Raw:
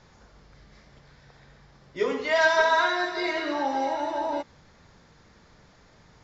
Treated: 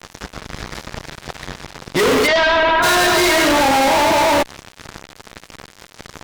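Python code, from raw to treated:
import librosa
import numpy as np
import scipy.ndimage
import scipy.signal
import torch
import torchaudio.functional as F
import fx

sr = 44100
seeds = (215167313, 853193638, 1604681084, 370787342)

y = fx.fuzz(x, sr, gain_db=47.0, gate_db=-50.0)
y = fx.lowpass(y, sr, hz=fx.line((2.26, 5500.0), (2.82, 2700.0)), slope=24, at=(2.26, 2.82), fade=0.02)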